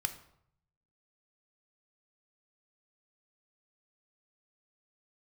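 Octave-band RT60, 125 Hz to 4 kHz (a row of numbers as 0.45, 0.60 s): 1.2, 0.75, 0.70, 0.70, 0.55, 0.50 s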